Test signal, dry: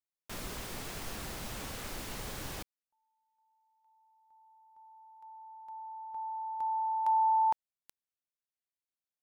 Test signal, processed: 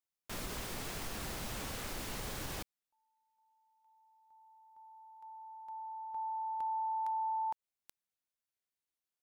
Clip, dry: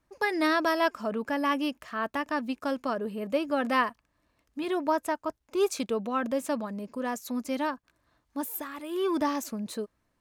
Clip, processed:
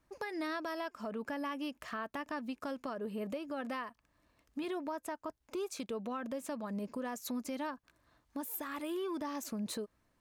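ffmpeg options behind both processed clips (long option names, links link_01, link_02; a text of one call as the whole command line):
ffmpeg -i in.wav -af "acompressor=threshold=-33dB:ratio=10:attack=1.2:release=428:knee=1:detection=peak" out.wav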